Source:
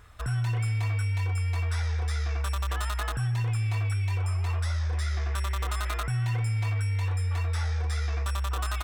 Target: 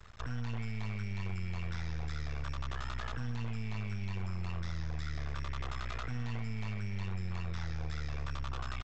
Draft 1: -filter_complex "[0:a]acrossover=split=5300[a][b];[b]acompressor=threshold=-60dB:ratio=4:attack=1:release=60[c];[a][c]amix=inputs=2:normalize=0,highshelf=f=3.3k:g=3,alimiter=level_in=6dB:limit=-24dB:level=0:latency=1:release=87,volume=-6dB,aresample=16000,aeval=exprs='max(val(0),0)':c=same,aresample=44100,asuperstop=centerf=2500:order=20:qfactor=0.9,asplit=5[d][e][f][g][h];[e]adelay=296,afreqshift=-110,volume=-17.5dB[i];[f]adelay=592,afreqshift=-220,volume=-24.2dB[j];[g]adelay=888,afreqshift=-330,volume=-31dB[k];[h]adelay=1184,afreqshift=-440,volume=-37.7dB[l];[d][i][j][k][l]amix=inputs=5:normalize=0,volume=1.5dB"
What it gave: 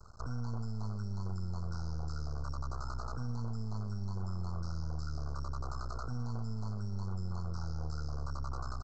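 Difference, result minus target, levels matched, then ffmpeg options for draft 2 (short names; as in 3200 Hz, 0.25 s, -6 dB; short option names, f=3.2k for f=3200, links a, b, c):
2000 Hz band -11.5 dB
-filter_complex "[0:a]acrossover=split=5300[a][b];[b]acompressor=threshold=-60dB:ratio=4:attack=1:release=60[c];[a][c]amix=inputs=2:normalize=0,highshelf=f=3.3k:g=3,alimiter=level_in=6dB:limit=-24dB:level=0:latency=1:release=87,volume=-6dB,aresample=16000,aeval=exprs='max(val(0),0)':c=same,aresample=44100,asplit=5[d][e][f][g][h];[e]adelay=296,afreqshift=-110,volume=-17.5dB[i];[f]adelay=592,afreqshift=-220,volume=-24.2dB[j];[g]adelay=888,afreqshift=-330,volume=-31dB[k];[h]adelay=1184,afreqshift=-440,volume=-37.7dB[l];[d][i][j][k][l]amix=inputs=5:normalize=0,volume=1.5dB"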